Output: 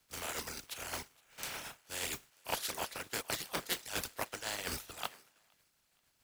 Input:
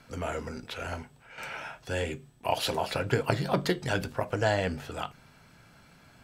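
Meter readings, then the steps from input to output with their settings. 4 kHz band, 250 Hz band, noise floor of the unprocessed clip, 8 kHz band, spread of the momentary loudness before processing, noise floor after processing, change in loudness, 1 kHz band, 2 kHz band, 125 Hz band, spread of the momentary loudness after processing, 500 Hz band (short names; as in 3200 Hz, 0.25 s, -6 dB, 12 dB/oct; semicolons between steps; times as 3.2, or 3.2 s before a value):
-3.0 dB, -15.5 dB, -58 dBFS, +5.0 dB, 12 LU, -76 dBFS, -8.0 dB, -10.0 dB, -7.0 dB, -20.0 dB, 7 LU, -15.0 dB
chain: spectral contrast lowered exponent 0.31; dynamic EQ 140 Hz, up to -6 dB, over -49 dBFS, Q 0.72; reverse; compressor 10:1, threshold -36 dBFS, peak gain reduction 16.5 dB; reverse; reverb removal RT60 1.4 s; on a send: thinning echo 0.468 s, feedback 65%, high-pass 420 Hz, level -18 dB; on the sum: three-band expander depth 100%; gain +2 dB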